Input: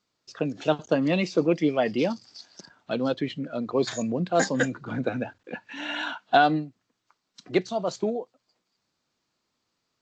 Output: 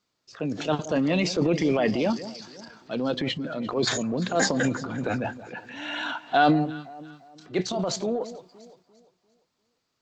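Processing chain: transient shaper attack -5 dB, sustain +9 dB; echo with dull and thin repeats by turns 0.173 s, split 1000 Hz, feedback 58%, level -13 dB

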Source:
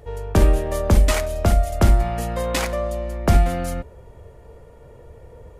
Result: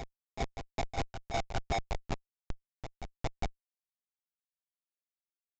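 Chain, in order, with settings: Doppler pass-by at 1.72, 32 m/s, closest 3.1 m; elliptic band-stop 370–750 Hz, stop band 40 dB; bell 80 Hz -5.5 dB 0.29 oct; in parallel at -1.5 dB: compressor 6:1, threshold -31 dBFS, peak gain reduction 19 dB; on the sum: grains 97 ms, grains 5.3/s, spray 69 ms; LFO notch saw up 0.54 Hz 430–3800 Hz; ring modulator 740 Hz; Schmitt trigger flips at -32 dBFS; on a send: reverse echo 0.407 s -9 dB; on the sum: downsampling 16000 Hz; gain +4 dB

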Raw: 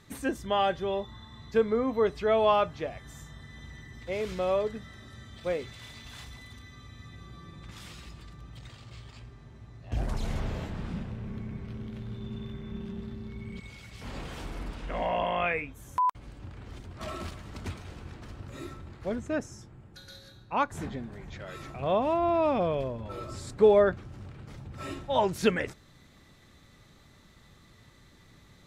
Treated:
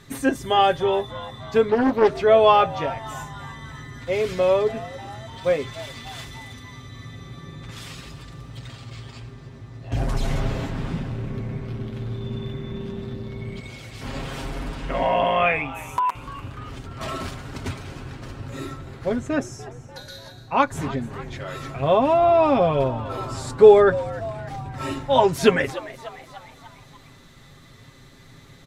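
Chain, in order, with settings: comb 7.4 ms, depth 60%; frequency-shifting echo 0.295 s, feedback 56%, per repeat +120 Hz, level -17 dB; 1.69–2.2 Doppler distortion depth 0.6 ms; gain +7 dB

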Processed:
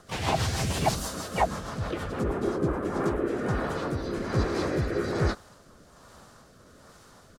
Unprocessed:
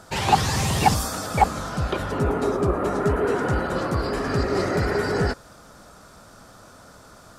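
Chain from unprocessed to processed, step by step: harmoniser -3 st 0 dB, +4 st -6 dB; rotary speaker horn 6.3 Hz, later 1.2 Hz, at 2.31; gain -6.5 dB

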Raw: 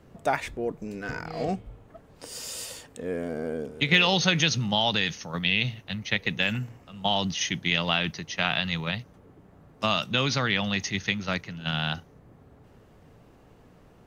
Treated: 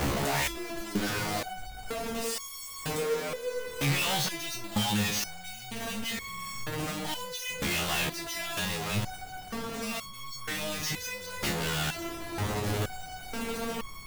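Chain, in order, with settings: infinite clipping; 6.14–6.64 flutter echo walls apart 7.8 m, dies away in 1.4 s; stepped resonator 2.1 Hz 70–1100 Hz; gain +9 dB

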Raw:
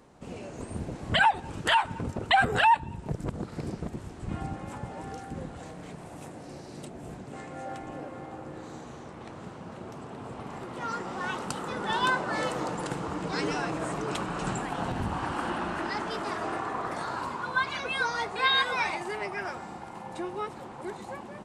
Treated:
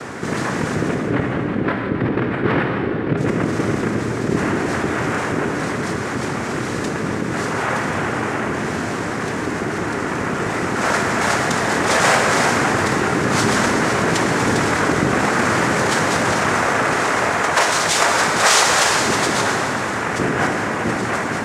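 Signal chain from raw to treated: 0.94–3.17 steep low-pass 580 Hz 72 dB/oct; noise vocoder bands 3; plate-style reverb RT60 2.1 s, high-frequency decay 0.95×, DRR 3.5 dB; fast leveller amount 50%; gain +8 dB

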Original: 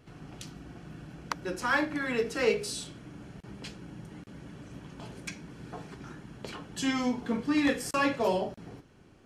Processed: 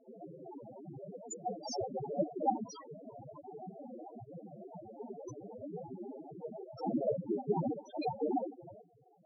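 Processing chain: vocal rider within 4 dB 0.5 s; noise vocoder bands 2; loudest bins only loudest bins 2; gain +6.5 dB

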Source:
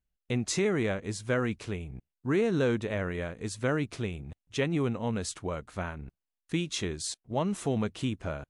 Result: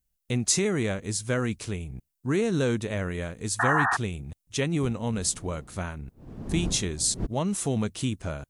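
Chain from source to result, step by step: 4.82–7.25 wind noise 260 Hz -37 dBFS; high shelf 7300 Hz +8.5 dB; 3.59–3.97 painted sound noise 680–1900 Hz -24 dBFS; tone controls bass +4 dB, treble +7 dB

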